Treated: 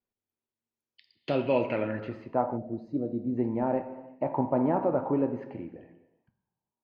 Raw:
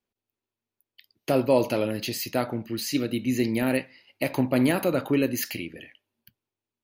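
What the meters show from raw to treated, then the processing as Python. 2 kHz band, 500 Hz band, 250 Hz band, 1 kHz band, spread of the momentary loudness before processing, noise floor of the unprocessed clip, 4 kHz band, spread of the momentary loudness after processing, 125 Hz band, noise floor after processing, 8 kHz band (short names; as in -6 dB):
-10.5 dB, -2.5 dB, -4.5 dB, +1.5 dB, 9 LU, under -85 dBFS, under -15 dB, 13 LU, -5.0 dB, under -85 dBFS, under -40 dB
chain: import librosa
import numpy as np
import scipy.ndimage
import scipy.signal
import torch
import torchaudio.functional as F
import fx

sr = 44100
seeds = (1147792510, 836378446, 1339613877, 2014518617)

y = fx.high_shelf(x, sr, hz=3400.0, db=-11.5)
y = fx.rev_gated(y, sr, seeds[0], gate_ms=440, shape='falling', drr_db=8.5)
y = fx.filter_sweep_lowpass(y, sr, from_hz=15000.0, to_hz=910.0, start_s=0.19, end_s=2.43, q=3.7)
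y = fx.spec_box(y, sr, start_s=2.57, length_s=0.8, low_hz=750.0, high_hz=3600.0, gain_db=-16)
y = y * 10.0 ** (-5.0 / 20.0)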